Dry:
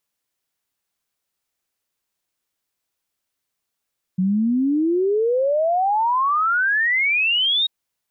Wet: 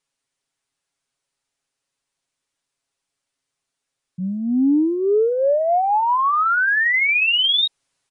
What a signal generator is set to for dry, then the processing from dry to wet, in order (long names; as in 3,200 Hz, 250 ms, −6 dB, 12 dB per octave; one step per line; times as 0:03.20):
exponential sine sweep 180 Hz → 3,800 Hz 3.49 s −16 dBFS
comb filter 7.3 ms, depth 63%
transient designer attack −7 dB, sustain +7 dB
downsampling to 22,050 Hz